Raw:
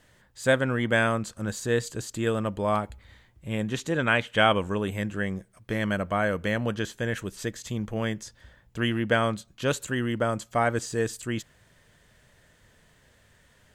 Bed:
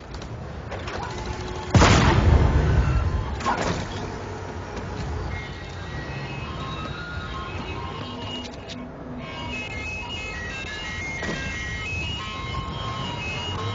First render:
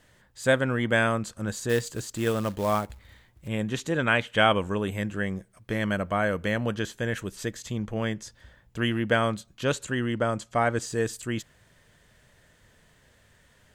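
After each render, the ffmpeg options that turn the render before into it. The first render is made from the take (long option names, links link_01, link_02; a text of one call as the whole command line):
ffmpeg -i in.wav -filter_complex "[0:a]asettb=1/sr,asplit=3[link_01][link_02][link_03];[link_01]atrim=end=1.694[link_04];[link_02]atrim=start=1.69:end=3.48,asetpts=PTS-STARTPTS,afade=type=in:duration=0.004:curve=qsin,afade=type=out:start_time=1.786:duration=0.004:curve=qsin,acrusher=bits=4:mode=log:mix=0:aa=0.000001[link_05];[link_03]atrim=start=3.476[link_06];[link_04][link_05]acrossfade=duration=0.004:curve1=hsin:curve2=qsin[link_07];[link_07][link_06]acrossfade=duration=0.004:curve1=qsin:curve2=hsin,asettb=1/sr,asplit=3[link_08][link_09][link_10];[link_08]atrim=end=7.664[link_11];[link_09]atrim=start=7.66:end=8.24,asetpts=PTS-STARTPTS,afade=type=in:duration=0.004:curve=qsin,afade=type=out:start_time=0.576:duration=0.004:curve=qsin,highshelf=frequency=12000:gain=-10[link_12];[link_10]atrim=start=8.236[link_13];[link_11][link_12]acrossfade=duration=0.004:curve1=hsin:curve2=qsin[link_14];[link_14][link_13]acrossfade=duration=0.004:curve1=qsin:curve2=hsin,asettb=1/sr,asplit=3[link_15][link_16][link_17];[link_15]atrim=end=9.634[link_18];[link_16]atrim=start=9.63:end=10.8,asetpts=PTS-STARTPTS,afade=type=in:duration=0.004:curve=qsin,afade=type=out:start_time=1.166:duration=0.004:curve=qsin,lowpass=8900[link_19];[link_17]atrim=start=10.796[link_20];[link_18][link_19]acrossfade=duration=0.004:curve1=hsin:curve2=qsin[link_21];[link_21][link_20]acrossfade=duration=0.004:curve1=qsin:curve2=hsin" out.wav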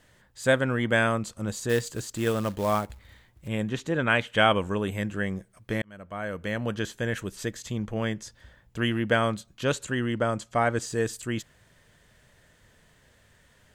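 ffmpeg -i in.wav -filter_complex "[0:a]asettb=1/sr,asplit=3[link_01][link_02][link_03];[link_01]atrim=end=1.174[link_04];[link_02]atrim=start=1.17:end=1.63,asetpts=PTS-STARTPTS,afade=type=in:duration=0.004:curve=qsin,afade=type=out:start_time=0.456:duration=0.004:curve=qsin,equalizer=frequency=1600:width=6.7:gain=-9.5[link_05];[link_03]atrim=start=1.626[link_06];[link_04][link_05]acrossfade=duration=0.004:curve1=hsin:curve2=qsin[link_07];[link_07][link_06]acrossfade=duration=0.004:curve1=qsin:curve2=hsin,asettb=1/sr,asplit=3[link_08][link_09][link_10];[link_08]atrim=end=3.694[link_11];[link_09]atrim=start=3.69:end=4.1,asetpts=PTS-STARTPTS,afade=type=in:duration=0.004:curve=qsin,afade=type=out:start_time=0.406:duration=0.004:curve=qsin,highshelf=frequency=4200:gain=-8[link_12];[link_10]atrim=start=4.096[link_13];[link_11][link_12]acrossfade=duration=0.004:curve1=hsin:curve2=qsin[link_14];[link_14][link_13]acrossfade=duration=0.004:curve1=qsin:curve2=hsin,asplit=2[link_15][link_16];[link_15]atrim=end=5.82,asetpts=PTS-STARTPTS,afade=type=out:start_time=5.816:duration=0.004:curve=hsin[link_17];[link_16]atrim=start=5.82,asetpts=PTS-STARTPTS,afade=type=in:duration=1.03[link_18];[link_17][link_18]concat=n=2:v=0:a=1" out.wav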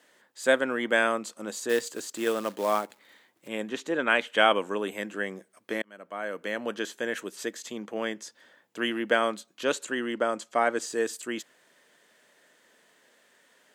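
ffmpeg -i in.wav -af "highpass=frequency=260:width=0.5412,highpass=frequency=260:width=1.3066" out.wav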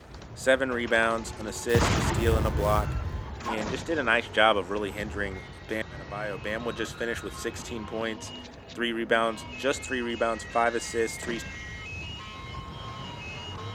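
ffmpeg -i in.wav -i bed.wav -filter_complex "[1:a]volume=-9dB[link_01];[0:a][link_01]amix=inputs=2:normalize=0" out.wav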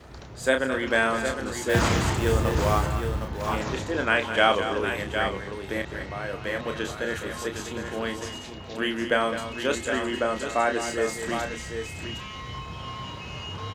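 ffmpeg -i in.wav -filter_complex "[0:a]asplit=2[link_01][link_02];[link_02]adelay=31,volume=-6.5dB[link_03];[link_01][link_03]amix=inputs=2:normalize=0,aecho=1:1:208|761:0.299|0.422" out.wav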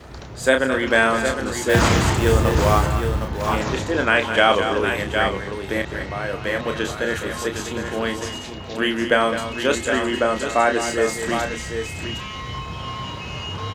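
ffmpeg -i in.wav -af "volume=6dB,alimiter=limit=-3dB:level=0:latency=1" out.wav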